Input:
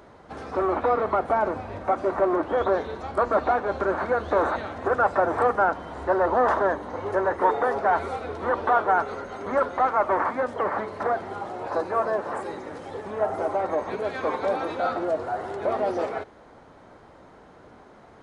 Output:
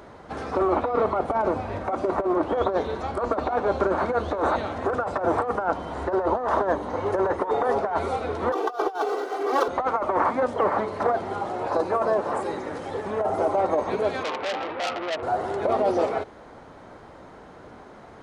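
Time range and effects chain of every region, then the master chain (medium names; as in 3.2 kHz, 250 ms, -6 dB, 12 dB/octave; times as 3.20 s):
8.52–9.68 s: median filter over 15 samples + steep high-pass 300 Hz + comb 2.6 ms, depth 97%
14.23–15.23 s: low-pass 2.5 kHz 24 dB/octave + bass shelf 390 Hz -7 dB + transformer saturation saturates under 3.3 kHz
whole clip: dynamic bell 1.7 kHz, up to -6 dB, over -42 dBFS, Q 2; compressor with a negative ratio -24 dBFS, ratio -0.5; trim +2.5 dB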